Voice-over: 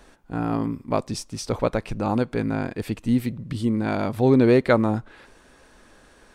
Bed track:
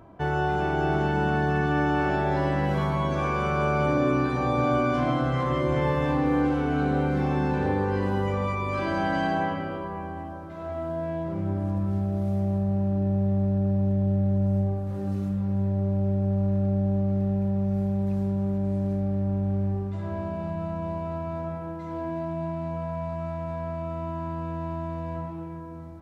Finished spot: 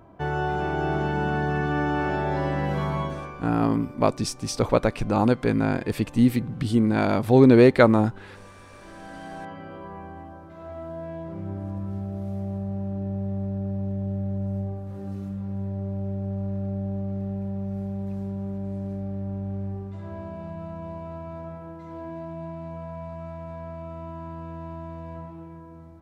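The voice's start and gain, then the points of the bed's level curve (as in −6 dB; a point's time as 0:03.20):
3.10 s, +2.5 dB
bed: 0:03.00 −1 dB
0:03.56 −21.5 dB
0:08.68 −21.5 dB
0:09.90 −5 dB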